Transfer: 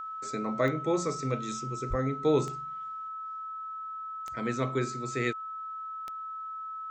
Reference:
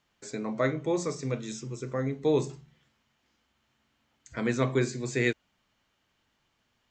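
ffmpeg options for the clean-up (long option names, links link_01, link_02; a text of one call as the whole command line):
ffmpeg -i in.wav -filter_complex "[0:a]adeclick=threshold=4,bandreject=frequency=1300:width=30,asplit=3[link_01][link_02][link_03];[link_01]afade=type=out:start_time=1.89:duration=0.02[link_04];[link_02]highpass=frequency=140:width=0.5412,highpass=frequency=140:width=1.3066,afade=type=in:start_time=1.89:duration=0.02,afade=type=out:start_time=2.01:duration=0.02[link_05];[link_03]afade=type=in:start_time=2.01:duration=0.02[link_06];[link_04][link_05][link_06]amix=inputs=3:normalize=0,asetnsamples=nb_out_samples=441:pad=0,asendcmd='3.08 volume volume 4dB',volume=0dB" out.wav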